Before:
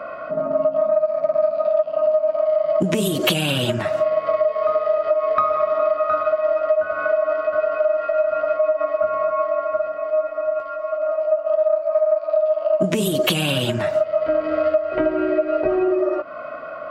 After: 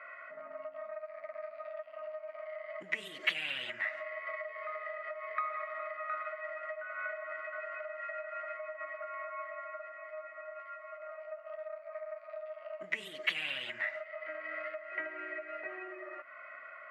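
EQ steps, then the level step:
resonant band-pass 2,000 Hz, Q 10
+4.0 dB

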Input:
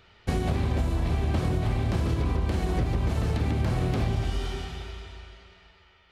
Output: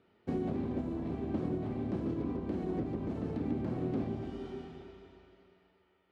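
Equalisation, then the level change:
resonant band-pass 270 Hz, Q 1.9
spectral tilt +2 dB per octave
+4.0 dB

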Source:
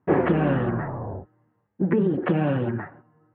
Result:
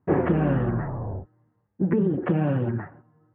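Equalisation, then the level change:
high-frequency loss of the air 280 metres
low-shelf EQ 94 Hz +11 dB
−2.0 dB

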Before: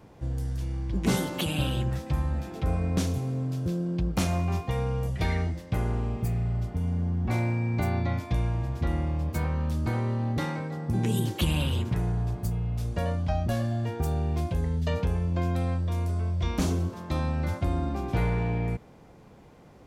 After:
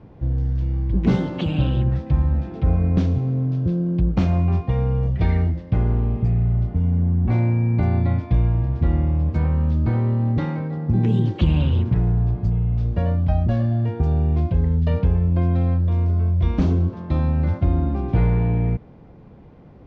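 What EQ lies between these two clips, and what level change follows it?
low-pass filter 5,700 Hz 12 dB per octave
high-frequency loss of the air 160 metres
low-shelf EQ 420 Hz +9.5 dB
0.0 dB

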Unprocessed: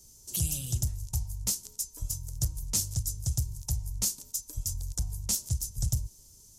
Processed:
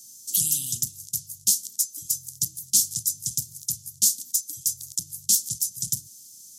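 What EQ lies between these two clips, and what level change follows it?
high-pass filter 150 Hz 24 dB per octave
elliptic band-stop filter 310–3,200 Hz, stop band 60 dB
high-shelf EQ 2,200 Hz +11 dB
0.0 dB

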